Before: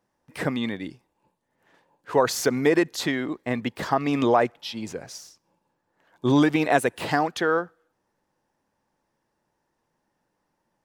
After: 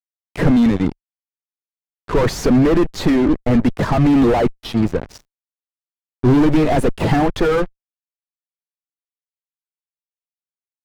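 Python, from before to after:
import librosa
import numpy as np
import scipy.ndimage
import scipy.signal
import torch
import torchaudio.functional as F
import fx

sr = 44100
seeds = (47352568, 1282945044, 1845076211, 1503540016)

y = fx.spec_quant(x, sr, step_db=15)
y = fx.fuzz(y, sr, gain_db=33.0, gate_db=-38.0)
y = fx.tilt_eq(y, sr, slope=-3.5)
y = y * librosa.db_to_amplitude(-3.5)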